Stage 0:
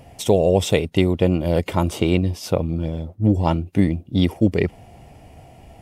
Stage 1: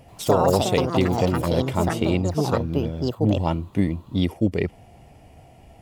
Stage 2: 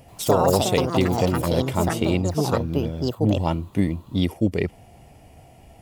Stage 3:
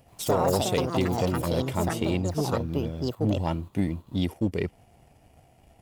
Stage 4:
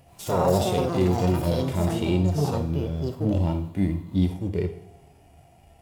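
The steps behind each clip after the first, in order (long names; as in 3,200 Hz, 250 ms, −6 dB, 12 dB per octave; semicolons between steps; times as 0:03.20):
delay with pitch and tempo change per echo 85 ms, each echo +6 semitones, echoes 2; level −4 dB
high-shelf EQ 6,600 Hz +6.5 dB
leveller curve on the samples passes 1; level −8 dB
harmonic and percussive parts rebalanced percussive −16 dB; coupled-rooms reverb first 0.59 s, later 1.8 s, DRR 6 dB; level +5.5 dB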